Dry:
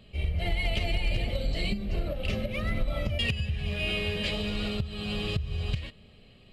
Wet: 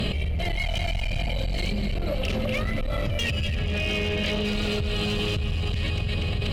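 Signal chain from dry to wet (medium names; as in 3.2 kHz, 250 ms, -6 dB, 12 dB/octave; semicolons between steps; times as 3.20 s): 0.56–1.52 s: comb 1.3 ms, depth 77%; 3.59–4.45 s: distance through air 140 m; two-band feedback delay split 1.4 kHz, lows 328 ms, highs 241 ms, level -10.5 dB; one-sided clip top -30.5 dBFS, bottom -15.5 dBFS; level flattener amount 100%; trim -3.5 dB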